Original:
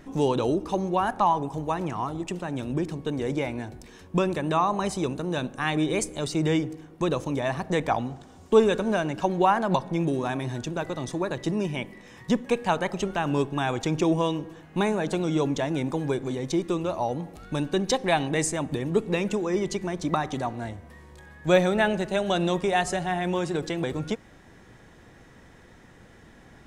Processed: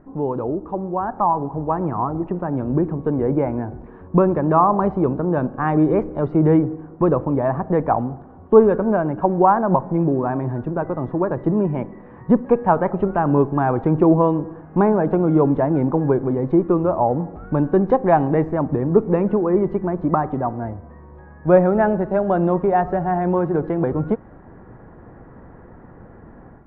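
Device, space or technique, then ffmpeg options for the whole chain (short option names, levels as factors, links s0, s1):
action camera in a waterproof case: -af "lowpass=f=1300:w=0.5412,lowpass=f=1300:w=1.3066,dynaudnorm=f=980:g=3:m=3.16" -ar 24000 -c:a aac -b:a 64k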